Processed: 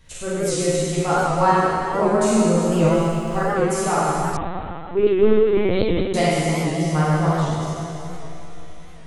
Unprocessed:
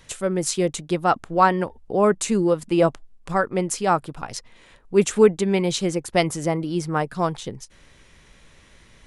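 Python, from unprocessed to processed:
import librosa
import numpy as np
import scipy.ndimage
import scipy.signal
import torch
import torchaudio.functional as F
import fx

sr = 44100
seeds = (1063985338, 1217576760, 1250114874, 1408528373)

y = fx.low_shelf(x, sr, hz=140.0, db=10.5)
y = fx.doubler(y, sr, ms=13.0, db=-2.0)
y = fx.echo_alternate(y, sr, ms=185, hz=870.0, feedback_pct=73, wet_db=-9.5)
y = fx.rev_schroeder(y, sr, rt60_s=2.2, comb_ms=32, drr_db=-7.5)
y = fx.quant_dither(y, sr, seeds[0], bits=8, dither='none', at=(2.72, 3.51))
y = fx.lpc_vocoder(y, sr, seeds[1], excitation='pitch_kept', order=16, at=(4.37, 6.14))
y = fx.record_warp(y, sr, rpm=78.0, depth_cents=100.0)
y = y * 10.0 ** (-8.5 / 20.0)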